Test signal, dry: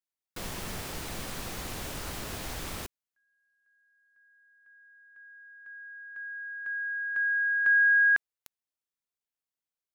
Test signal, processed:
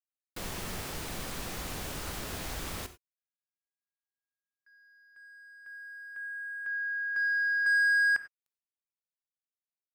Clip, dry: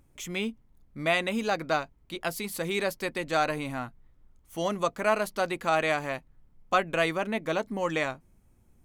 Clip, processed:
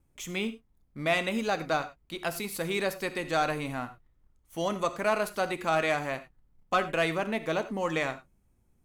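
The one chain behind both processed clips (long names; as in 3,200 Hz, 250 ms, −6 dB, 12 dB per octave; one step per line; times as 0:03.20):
noise gate with hold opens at −56 dBFS, range −32 dB
leveller curve on the samples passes 1
reverb whose tail is shaped and stops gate 120 ms flat, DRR 11 dB
level −4.5 dB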